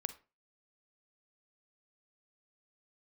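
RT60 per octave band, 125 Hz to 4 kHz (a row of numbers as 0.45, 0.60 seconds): 0.40, 0.35, 0.35, 0.30, 0.30, 0.25 seconds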